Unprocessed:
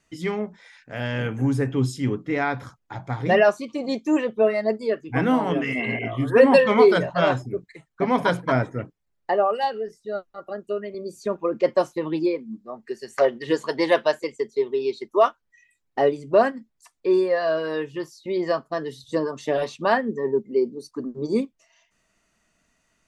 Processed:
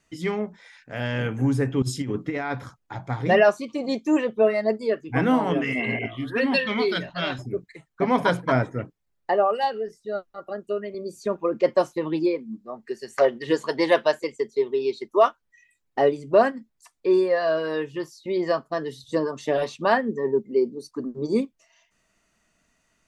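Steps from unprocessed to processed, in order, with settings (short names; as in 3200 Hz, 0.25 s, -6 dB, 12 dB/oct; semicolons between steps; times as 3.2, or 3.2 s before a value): 1.82–2.52 negative-ratio compressor -26 dBFS, ratio -0.5; 6.06–7.39 graphic EQ 125/500/1000/4000/8000 Hz -9/-11/-9/+7/-12 dB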